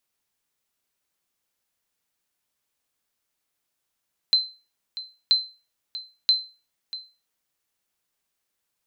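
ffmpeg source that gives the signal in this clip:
ffmpeg -f lavfi -i "aevalsrc='0.282*(sin(2*PI*4080*mod(t,0.98))*exp(-6.91*mod(t,0.98)/0.32)+0.168*sin(2*PI*4080*max(mod(t,0.98)-0.64,0))*exp(-6.91*max(mod(t,0.98)-0.64,0)/0.32))':duration=2.94:sample_rate=44100" out.wav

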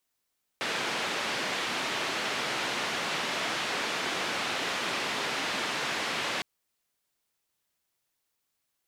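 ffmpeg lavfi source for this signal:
ffmpeg -f lavfi -i "anoisesrc=color=white:duration=5.81:sample_rate=44100:seed=1,highpass=frequency=190,lowpass=frequency=3100,volume=-18.3dB" out.wav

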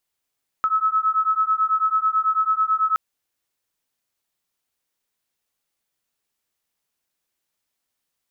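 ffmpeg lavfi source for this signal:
ffmpeg -f lavfi -i "aevalsrc='0.0944*(sin(2*PI*1290*t)+sin(2*PI*1299.1*t))':duration=2.32:sample_rate=44100" out.wav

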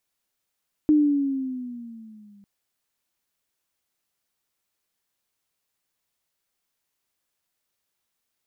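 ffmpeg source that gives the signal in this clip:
ffmpeg -f lavfi -i "aevalsrc='pow(10,(-13-36*t/1.55)/20)*sin(2*PI*306*1.55/(-7.5*log(2)/12)*(exp(-7.5*log(2)/12*t/1.55)-1))':duration=1.55:sample_rate=44100" out.wav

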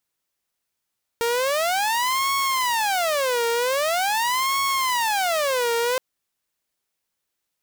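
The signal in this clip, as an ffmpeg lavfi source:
ffmpeg -f lavfi -i "aevalsrc='0.133*(2*mod((782.5*t-317.5/(2*PI*0.44)*sin(2*PI*0.44*t)),1)-1)':duration=4.77:sample_rate=44100" out.wav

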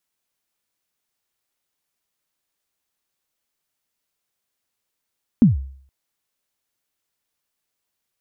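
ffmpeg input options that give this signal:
ffmpeg -f lavfi -i "aevalsrc='0.531*pow(10,-3*t/0.56)*sin(2*PI*(260*0.145/log(67/260)*(exp(log(67/260)*min(t,0.145)/0.145)-1)+67*max(t-0.145,0)))':duration=0.47:sample_rate=44100" out.wav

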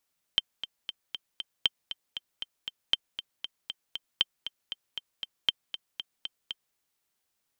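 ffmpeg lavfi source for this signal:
ffmpeg -f lavfi -i "aevalsrc='pow(10,(-9-12*gte(mod(t,5*60/235),60/235))/20)*sin(2*PI*3130*mod(t,60/235))*exp(-6.91*mod(t,60/235)/0.03)':duration=6.38:sample_rate=44100" out.wav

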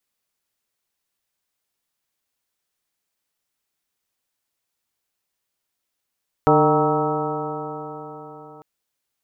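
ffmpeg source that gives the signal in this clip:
ffmpeg -f lavfi -i "aevalsrc='0.0944*pow(10,-3*t/4.29)*sin(2*PI*149.22*t)+0.112*pow(10,-3*t/4.29)*sin(2*PI*299.78*t)+0.158*pow(10,-3*t/4.29)*sin(2*PI*452.99*t)+0.0891*pow(10,-3*t/4.29)*sin(2*PI*610.14*t)+0.126*pow(10,-3*t/4.29)*sin(2*PI*772.43*t)+0.0944*pow(10,-3*t/4.29)*sin(2*PI*941.04*t)+0.0398*pow(10,-3*t/4.29)*sin(2*PI*1117.03*t)+0.1*pow(10,-3*t/4.29)*sin(2*PI*1301.41*t)':duration=2.15:sample_rate=44100" out.wav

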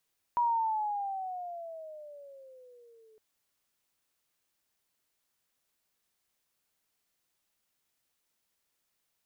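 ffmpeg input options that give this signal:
ffmpeg -f lavfi -i "aevalsrc='pow(10,(-23.5-34*t/2.81)/20)*sin(2*PI*967*2.81/(-14*log(2)/12)*(exp(-14*log(2)/12*t/2.81)-1))':duration=2.81:sample_rate=44100" out.wav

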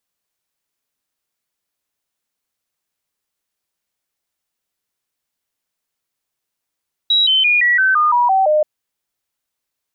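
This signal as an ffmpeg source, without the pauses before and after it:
ffmpeg -f lavfi -i "aevalsrc='0.299*clip(min(mod(t,0.17),0.17-mod(t,0.17))/0.005,0,1)*sin(2*PI*3870*pow(2,-floor(t/0.17)/3)*mod(t,0.17))':duration=1.53:sample_rate=44100" out.wav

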